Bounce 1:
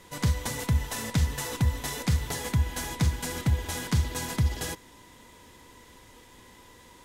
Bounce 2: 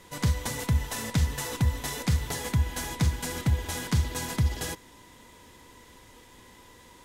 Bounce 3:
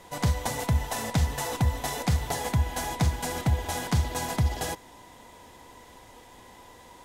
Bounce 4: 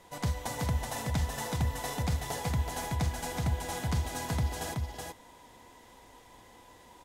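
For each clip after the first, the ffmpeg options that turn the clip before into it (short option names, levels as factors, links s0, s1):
-af anull
-af "equalizer=f=730:w=2:g=11"
-af "aecho=1:1:375:0.668,volume=0.473"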